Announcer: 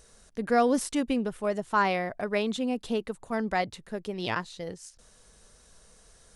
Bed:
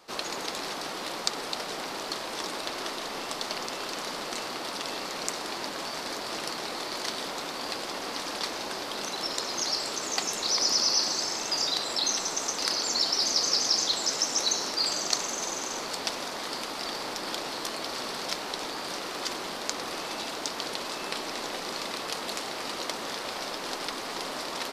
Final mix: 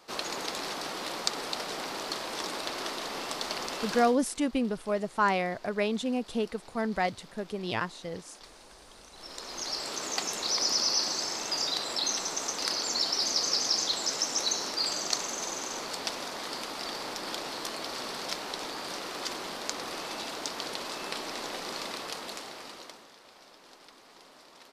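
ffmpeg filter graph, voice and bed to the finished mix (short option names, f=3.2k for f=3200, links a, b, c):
-filter_complex "[0:a]adelay=3450,volume=-1dB[a];[1:a]volume=16dB,afade=t=out:st=3.96:d=0.2:silence=0.11885,afade=t=in:st=9.12:d=0.87:silence=0.141254,afade=t=out:st=21.84:d=1.25:silence=0.133352[b];[a][b]amix=inputs=2:normalize=0"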